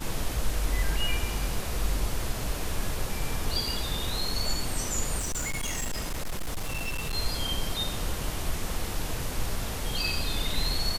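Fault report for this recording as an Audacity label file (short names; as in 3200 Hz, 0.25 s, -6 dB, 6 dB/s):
5.180000	7.150000	clipped -27 dBFS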